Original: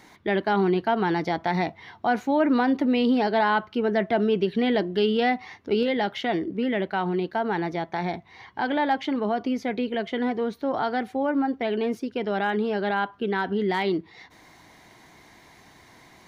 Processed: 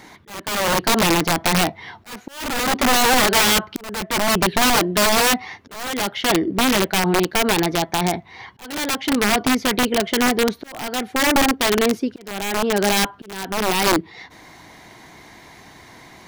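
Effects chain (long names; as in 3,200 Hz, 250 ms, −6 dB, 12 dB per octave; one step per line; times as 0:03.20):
wrap-around overflow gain 19 dB
volume swells 648 ms
level +8 dB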